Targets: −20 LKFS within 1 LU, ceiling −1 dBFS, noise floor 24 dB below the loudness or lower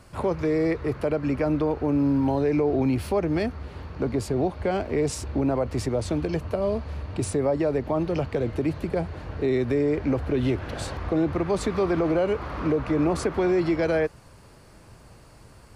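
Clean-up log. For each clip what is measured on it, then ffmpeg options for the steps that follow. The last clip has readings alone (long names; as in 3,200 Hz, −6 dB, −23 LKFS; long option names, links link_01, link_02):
integrated loudness −25.5 LKFS; sample peak −14.0 dBFS; target loudness −20.0 LKFS
→ -af "volume=5.5dB"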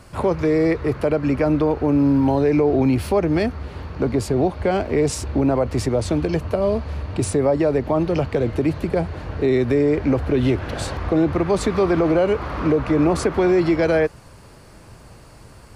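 integrated loudness −20.0 LKFS; sample peak −8.5 dBFS; background noise floor −45 dBFS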